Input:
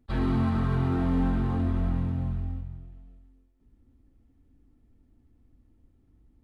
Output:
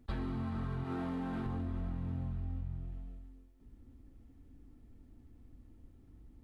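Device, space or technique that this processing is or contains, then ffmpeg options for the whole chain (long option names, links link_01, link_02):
serial compression, leveller first: -filter_complex "[0:a]asettb=1/sr,asplit=3[link_01][link_02][link_03];[link_01]atrim=end=0.844[link_04];[link_02]atrim=start=0.84:end=1.46,asetpts=PTS-STARTPTS,afade=type=in:duration=0.004:curve=qsin,afade=type=out:start_time=0.616:duration=0.004:curve=qsin,highpass=frequency=270:poles=1[link_05];[link_03]atrim=start=1.456[link_06];[link_04][link_05]acrossfade=duration=0.004:curve1=hsin:curve2=qsin[link_07];[link_07][link_06]acrossfade=duration=0.004:curve1=qsin:curve2=hsin,acompressor=threshold=-28dB:ratio=6,acompressor=threshold=-39dB:ratio=6,volume=4dB"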